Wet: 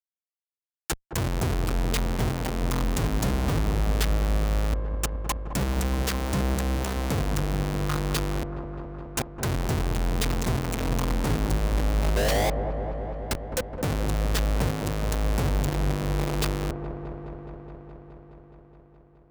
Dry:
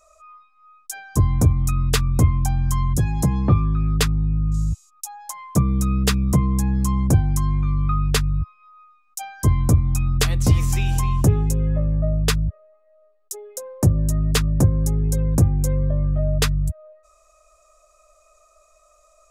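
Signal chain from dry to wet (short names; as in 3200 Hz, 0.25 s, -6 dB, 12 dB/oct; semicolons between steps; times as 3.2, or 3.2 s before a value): one diode to ground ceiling -15.5 dBFS; 8.29–9.44 bell 550 Hz -6 dB 1.4 oct; 12.15–13.53 ring modulator 530 Hz -> 1800 Hz; Schmitt trigger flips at -29.5 dBFS; HPF 44 Hz 6 dB/oct; dark delay 0.21 s, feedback 79%, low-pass 1000 Hz, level -6.5 dB; gain -2.5 dB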